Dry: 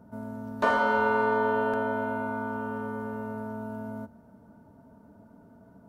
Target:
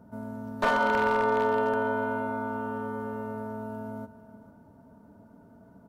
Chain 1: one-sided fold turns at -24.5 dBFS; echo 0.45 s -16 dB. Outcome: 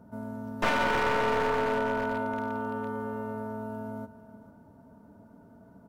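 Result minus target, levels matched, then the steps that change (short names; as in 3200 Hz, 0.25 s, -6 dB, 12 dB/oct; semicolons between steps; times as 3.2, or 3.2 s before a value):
one-sided fold: distortion +12 dB
change: one-sided fold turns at -18 dBFS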